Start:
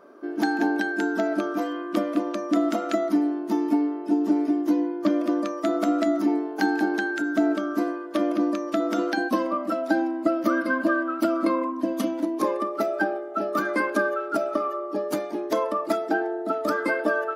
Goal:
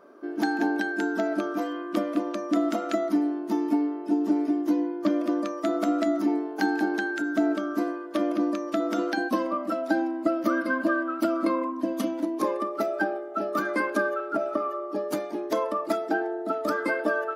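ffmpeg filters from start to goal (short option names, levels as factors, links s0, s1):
-filter_complex "[0:a]asettb=1/sr,asplit=3[s0][s1][s2];[s0]atrim=end=14.204[s3];[s1]atrim=start=14.2:end=14.92,asetpts=PTS-STARTPTS,afade=t=in:d=0.004:c=qsin,afade=t=out:st=0.716:d=0.004:c=qsin,acrossover=split=2500[s4][s5];[s5]acompressor=threshold=0.002:ratio=4:attack=1:release=60[s6];[s4][s6]amix=inputs=2:normalize=0[s7];[s2]atrim=start=14.916[s8];[s3][s7]acrossfade=d=0.004:c1=hsin:c2=qsin[s9];[s9][s8]acrossfade=d=0.004:c1=qsin:c2=hsin,volume=0.794"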